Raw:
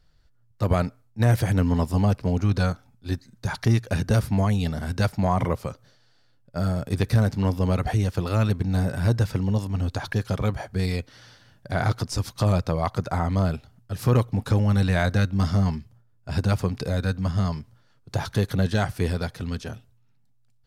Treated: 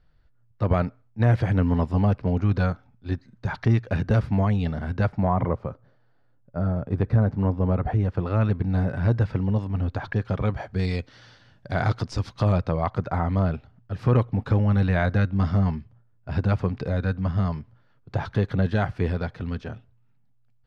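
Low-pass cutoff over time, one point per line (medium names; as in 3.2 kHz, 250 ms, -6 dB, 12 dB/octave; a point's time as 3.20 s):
4.73 s 2.6 kHz
5.56 s 1.3 kHz
7.79 s 1.3 kHz
8.62 s 2.3 kHz
10.28 s 2.3 kHz
10.94 s 4.6 kHz
11.79 s 4.6 kHz
12.90 s 2.5 kHz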